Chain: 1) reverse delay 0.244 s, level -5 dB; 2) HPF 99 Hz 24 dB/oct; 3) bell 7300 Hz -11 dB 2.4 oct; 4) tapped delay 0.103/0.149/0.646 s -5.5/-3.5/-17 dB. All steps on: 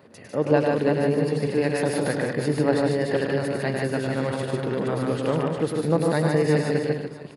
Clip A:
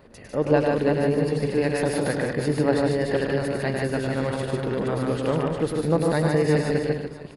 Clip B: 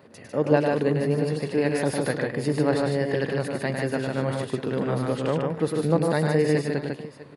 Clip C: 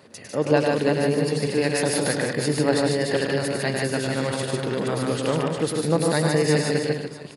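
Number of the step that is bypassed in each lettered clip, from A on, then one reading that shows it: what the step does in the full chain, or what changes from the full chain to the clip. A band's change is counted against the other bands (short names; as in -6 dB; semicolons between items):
2, crest factor change -2.0 dB; 1, momentary loudness spread change +1 LU; 3, 8 kHz band +9.0 dB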